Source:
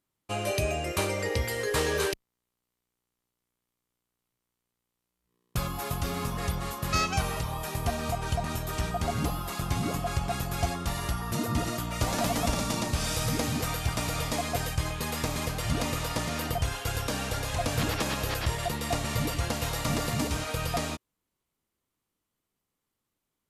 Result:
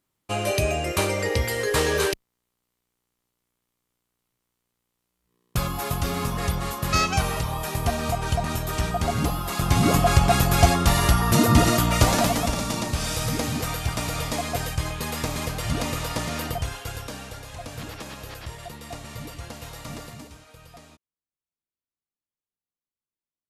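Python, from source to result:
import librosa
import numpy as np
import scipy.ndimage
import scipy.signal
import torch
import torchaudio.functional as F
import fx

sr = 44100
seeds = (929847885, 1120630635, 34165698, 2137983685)

y = fx.gain(x, sr, db=fx.line((9.43, 5.0), (9.95, 12.0), (11.92, 12.0), (12.49, 2.5), (16.4, 2.5), (17.43, -8.0), (19.98, -8.0), (20.42, -17.5)))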